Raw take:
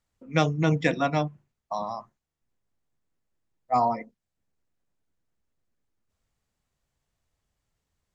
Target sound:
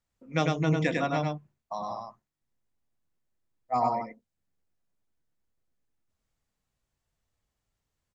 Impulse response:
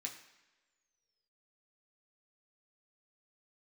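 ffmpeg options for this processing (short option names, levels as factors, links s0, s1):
-af "aecho=1:1:100:0.708,volume=0.596"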